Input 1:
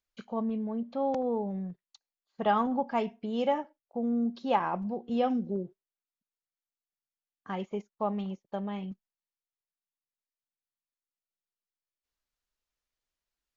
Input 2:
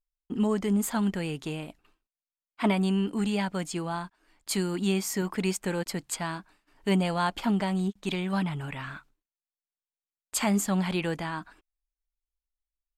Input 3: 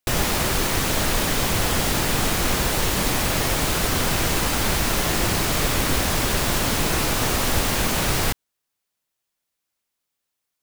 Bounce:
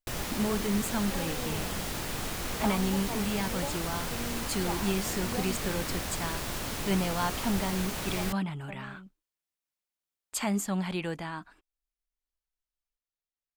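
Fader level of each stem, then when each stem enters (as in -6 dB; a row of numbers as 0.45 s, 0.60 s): -11.0 dB, -4.0 dB, -13.0 dB; 0.15 s, 0.00 s, 0.00 s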